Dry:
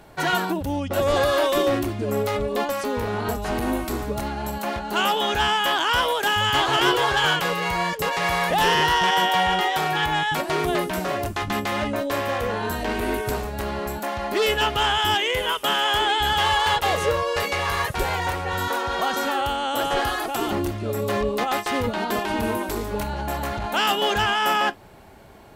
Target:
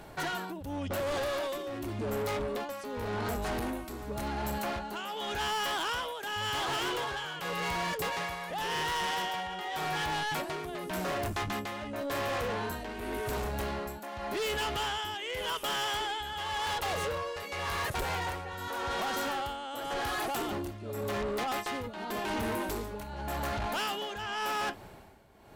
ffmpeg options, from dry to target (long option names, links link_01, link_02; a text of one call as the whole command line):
ffmpeg -i in.wav -af "alimiter=limit=-15.5dB:level=0:latency=1:release=156,tremolo=f=0.89:d=0.79,asoftclip=type=tanh:threshold=-30dB" out.wav